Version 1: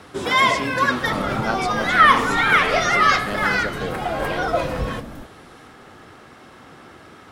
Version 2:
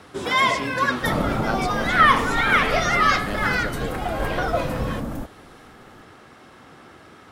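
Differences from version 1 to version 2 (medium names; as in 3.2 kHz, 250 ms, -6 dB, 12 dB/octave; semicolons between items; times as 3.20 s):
second sound +7.0 dB; reverb: off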